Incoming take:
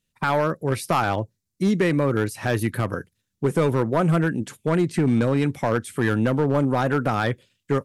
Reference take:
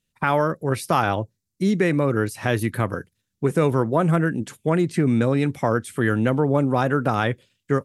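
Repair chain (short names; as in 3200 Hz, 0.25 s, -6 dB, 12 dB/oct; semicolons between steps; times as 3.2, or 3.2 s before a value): clip repair -13.5 dBFS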